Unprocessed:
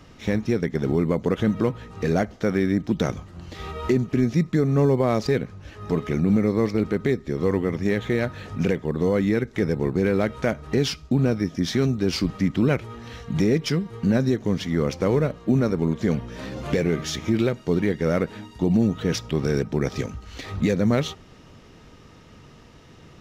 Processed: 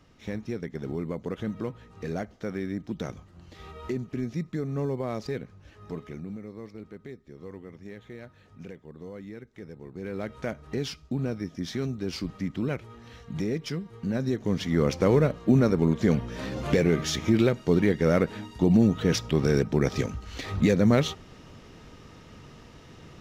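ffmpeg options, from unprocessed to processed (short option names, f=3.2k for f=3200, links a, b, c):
-af "volume=9.5dB,afade=t=out:st=5.74:d=0.64:silence=0.334965,afade=t=in:st=9.89:d=0.49:silence=0.281838,afade=t=in:st=14.11:d=0.78:silence=0.354813"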